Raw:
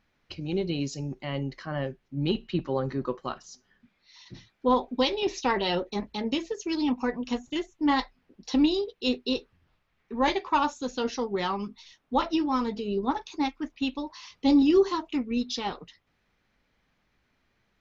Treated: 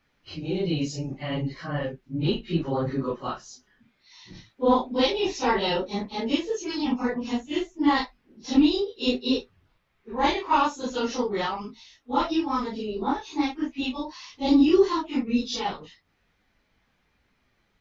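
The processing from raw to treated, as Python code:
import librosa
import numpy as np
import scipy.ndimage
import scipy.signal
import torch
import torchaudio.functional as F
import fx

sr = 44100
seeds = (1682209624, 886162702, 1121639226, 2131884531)

y = fx.phase_scramble(x, sr, seeds[0], window_ms=100)
y = fx.notch_comb(y, sr, f0_hz=190.0, at=(11.46, 13.02))
y = y * 10.0 ** (2.5 / 20.0)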